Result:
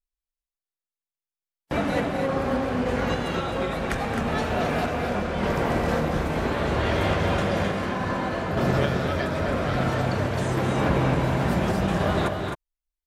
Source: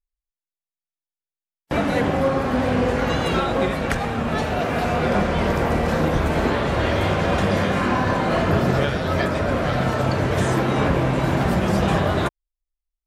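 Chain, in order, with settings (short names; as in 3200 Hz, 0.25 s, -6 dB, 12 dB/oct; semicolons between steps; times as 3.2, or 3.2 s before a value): random-step tremolo 3.5 Hz; loudspeakers at several distances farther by 76 m -11 dB, 90 m -6 dB; gain -3 dB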